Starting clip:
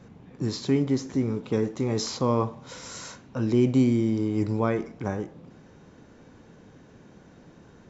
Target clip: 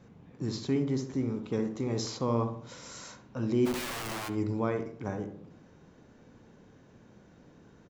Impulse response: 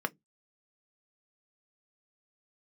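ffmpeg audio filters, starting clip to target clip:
-filter_complex "[0:a]asplit=3[a][b][c];[a]afade=t=out:st=3.65:d=0.02[d];[b]aeval=exprs='(mod(21.1*val(0)+1,2)-1)/21.1':c=same,afade=t=in:st=3.65:d=0.02,afade=t=out:st=4.28:d=0.02[e];[c]afade=t=in:st=4.28:d=0.02[f];[d][e][f]amix=inputs=3:normalize=0,asplit=2[g][h];[h]adelay=68,lowpass=f=1.2k:p=1,volume=-6.5dB,asplit=2[i][j];[j]adelay=68,lowpass=f=1.2k:p=1,volume=0.49,asplit=2[k][l];[l]adelay=68,lowpass=f=1.2k:p=1,volume=0.49,asplit=2[m][n];[n]adelay=68,lowpass=f=1.2k:p=1,volume=0.49,asplit=2[o][p];[p]adelay=68,lowpass=f=1.2k:p=1,volume=0.49,asplit=2[q][r];[r]adelay=68,lowpass=f=1.2k:p=1,volume=0.49[s];[g][i][k][m][o][q][s]amix=inputs=7:normalize=0,volume=-6dB"

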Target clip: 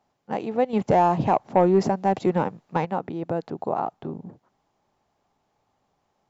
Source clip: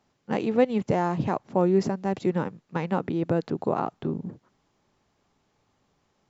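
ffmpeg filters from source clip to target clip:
-filter_complex "[0:a]equalizer=f=760:t=o:w=0.92:g=9,asettb=1/sr,asplit=3[a][b][c];[a]atrim=end=0.734[d];[b]atrim=start=0.73:end=2.85,asetpts=PTS-STARTPTS,afade=t=in:d=0.004:c=qsin,afade=t=out:st=2.116:d=0.004:c=qsin,acontrast=85[e];[c]atrim=start=2.846[f];[d][e]acrossfade=d=0.004:c1=hsin:c2=qsin[g];[g][f]acrossfade=d=0.004:c1=qsin:c2=hsin,volume=-5dB"

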